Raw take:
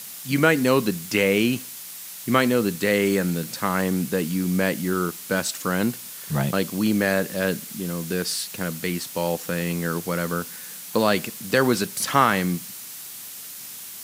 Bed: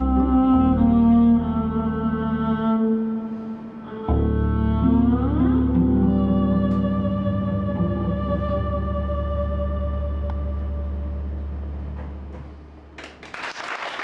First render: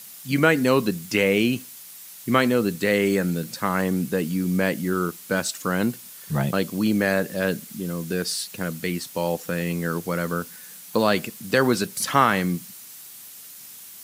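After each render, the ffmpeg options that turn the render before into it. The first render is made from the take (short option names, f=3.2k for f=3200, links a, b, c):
-af "afftdn=nr=6:nf=-38"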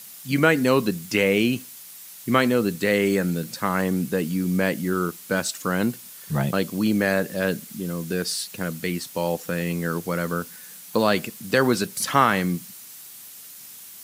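-af anull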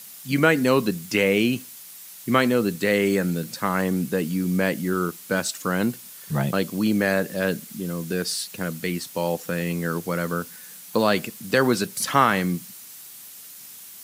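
-af "highpass=75"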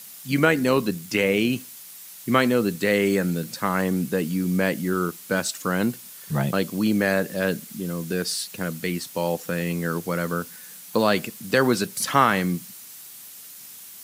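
-filter_complex "[0:a]asettb=1/sr,asplit=3[a][b][c];[a]atrim=end=0.454[d];[b]atrim=start=0.45:end=1.5,asetpts=PTS-STARTPTS,afade=t=in:d=0.004:c=qsin,afade=t=out:st=1.046:d=0.004:c=qsin,tremolo=f=79:d=0.261[e];[c]atrim=start=1.496[f];[d][e]acrossfade=d=0.004:c1=hsin:c2=qsin[g];[g][f]acrossfade=d=0.004:c1=qsin:c2=hsin"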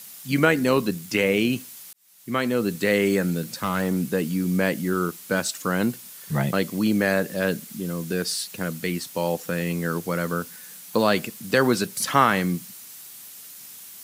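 -filter_complex "[0:a]asettb=1/sr,asplit=3[a][b][c];[a]atrim=end=3.484[d];[b]atrim=start=3.48:end=3.98,asetpts=PTS-STARTPTS,afade=t=in:d=0.004:c=qsin,afade=t=out:st=0.496:d=0.004:c=qsin,asoftclip=type=hard:threshold=-17dB[e];[c]atrim=start=3.976[f];[d][e]acrossfade=d=0.004:c1=hsin:c2=qsin[g];[g][f]acrossfade=d=0.004:c1=qsin:c2=hsin,asettb=1/sr,asplit=3[h][i][j];[h]atrim=end=6.314[k];[i]atrim=start=6.31:end=6.79,asetpts=PTS-STARTPTS,afade=t=in:d=0.004:c=qsin,afade=t=out:st=0.476:d=0.004:c=qsin,equalizer=f=2k:w=6.8:g=6.5[l];[j]atrim=start=6.786[m];[k][l]acrossfade=d=0.004:c1=hsin:c2=qsin[n];[n][m]acrossfade=d=0.004:c1=qsin:c2=hsin,asplit=2[o][p];[o]atrim=end=1.93,asetpts=PTS-STARTPTS,afade=t=out:st=1.926:d=0.004:c=hsin[q];[p]atrim=start=1.93,asetpts=PTS-STARTPTS,afade=t=in:d=0.84[r];[q][r]concat=n=2:v=0:a=1"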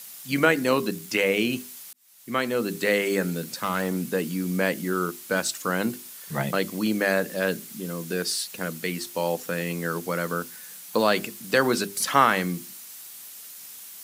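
-af "highpass=f=230:p=1,bandreject=f=50:t=h:w=6,bandreject=f=100:t=h:w=6,bandreject=f=150:t=h:w=6,bandreject=f=200:t=h:w=6,bandreject=f=250:t=h:w=6,bandreject=f=300:t=h:w=6,bandreject=f=350:t=h:w=6,bandreject=f=400:t=h:w=6"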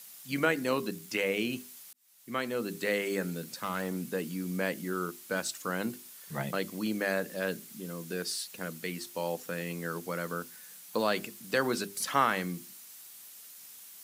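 -af "volume=-7.5dB"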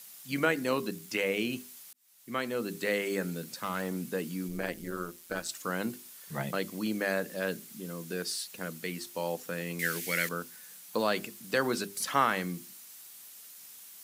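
-filter_complex "[0:a]asplit=3[a][b][c];[a]afade=t=out:st=4.47:d=0.02[d];[b]tremolo=f=170:d=0.75,afade=t=in:st=4.47:d=0.02,afade=t=out:st=5.48:d=0.02[e];[c]afade=t=in:st=5.48:d=0.02[f];[d][e][f]amix=inputs=3:normalize=0,asettb=1/sr,asplit=3[g][h][i];[g]atrim=end=9.794[j];[h]atrim=start=9.79:end=10.29,asetpts=PTS-STARTPTS,afade=t=in:d=0.004:c=qsin,afade=t=out:st=0.496:d=0.004:c=qsin,highshelf=f=1.5k:t=q:w=3:g=10.5[k];[i]atrim=start=10.286[l];[j][k]acrossfade=d=0.004:c1=hsin:c2=qsin[m];[m][l]acrossfade=d=0.004:c1=qsin:c2=hsin"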